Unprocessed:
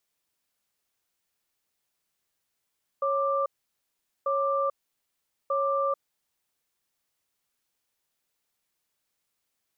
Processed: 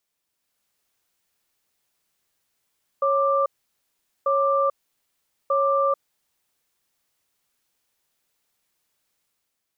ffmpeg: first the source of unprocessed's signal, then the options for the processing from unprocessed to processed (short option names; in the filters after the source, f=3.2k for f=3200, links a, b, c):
-f lavfi -i "aevalsrc='0.0501*(sin(2*PI*552*t)+sin(2*PI*1180*t))*clip(min(mod(t,1.24),0.44-mod(t,1.24))/0.005,0,1)':d=2.97:s=44100"
-af "dynaudnorm=f=110:g=9:m=5.5dB"